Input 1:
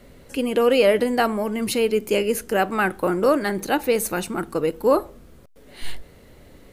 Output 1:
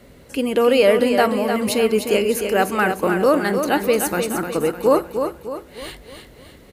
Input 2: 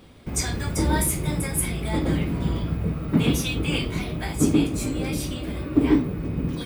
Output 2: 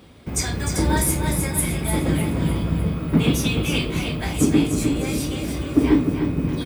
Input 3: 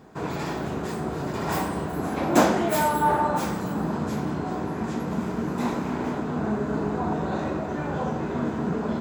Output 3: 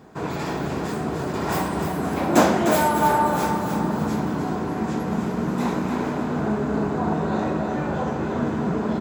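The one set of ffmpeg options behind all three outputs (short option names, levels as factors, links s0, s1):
-filter_complex "[0:a]highpass=42,asplit=2[s0][s1];[s1]aecho=0:1:303|606|909|1212|1515:0.447|0.201|0.0905|0.0407|0.0183[s2];[s0][s2]amix=inputs=2:normalize=0,volume=1.26"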